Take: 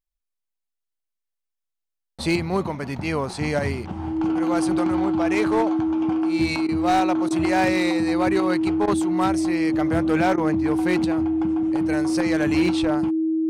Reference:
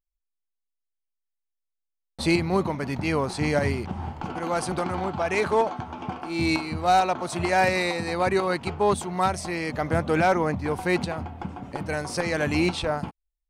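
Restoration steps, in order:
clipped peaks rebuilt −14 dBFS
notch filter 320 Hz, Q 30
repair the gap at 0:06.67/0:07.29/0:08.86/0:10.36, 15 ms

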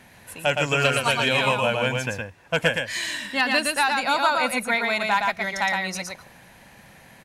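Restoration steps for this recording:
echo removal 116 ms −3.5 dB

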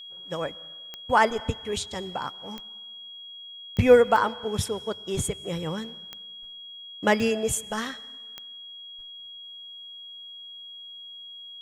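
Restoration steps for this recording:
click removal
notch filter 3,300 Hz, Q 30

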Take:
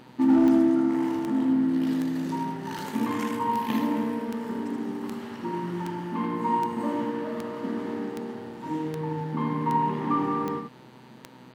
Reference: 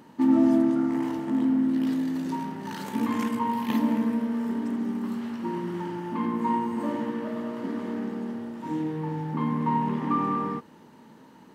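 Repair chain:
clipped peaks rebuilt −14 dBFS
click removal
hum removal 126.3 Hz, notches 38
echo removal 79 ms −5.5 dB

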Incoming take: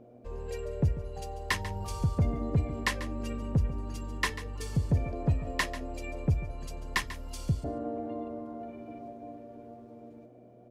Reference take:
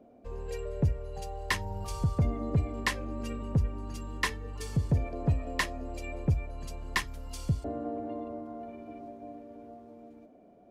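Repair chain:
hum removal 120.7 Hz, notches 5
echo removal 142 ms −14 dB

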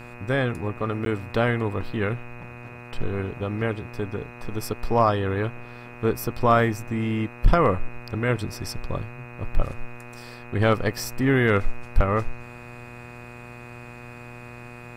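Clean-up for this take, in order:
clipped peaks rebuilt −9 dBFS
hum removal 120.7 Hz, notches 23
notch filter 2,500 Hz, Q 30
repair the gap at 0:01.05, 12 ms

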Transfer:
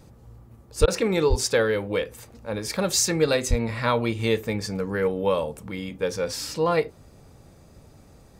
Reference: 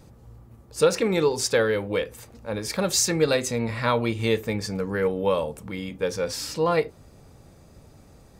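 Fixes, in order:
high-pass at the plosives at 0:00.80/0:01.29/0:03.49
repair the gap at 0:00.86, 16 ms

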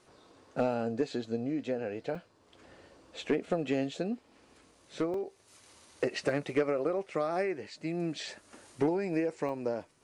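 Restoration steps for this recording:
repair the gap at 0:02.15/0:04.75/0:05.14/0:06.29/0:09.49, 2.2 ms

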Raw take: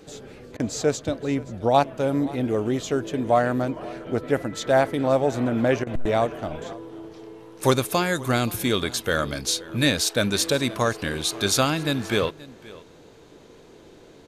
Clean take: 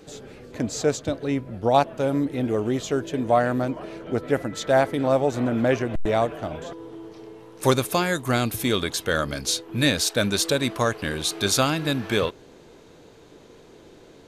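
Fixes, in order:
repair the gap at 0:00.57/0:05.84, 26 ms
echo removal 527 ms −20 dB

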